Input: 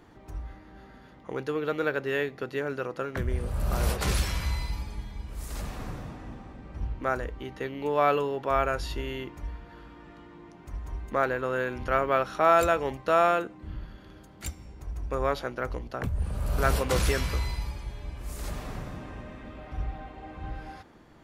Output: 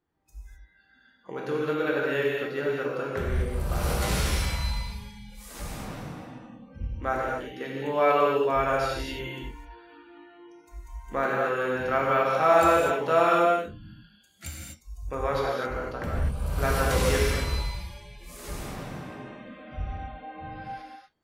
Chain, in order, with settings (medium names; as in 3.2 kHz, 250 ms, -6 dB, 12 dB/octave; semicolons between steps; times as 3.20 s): spectral noise reduction 25 dB; gated-style reverb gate 280 ms flat, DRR -4 dB; trim -3 dB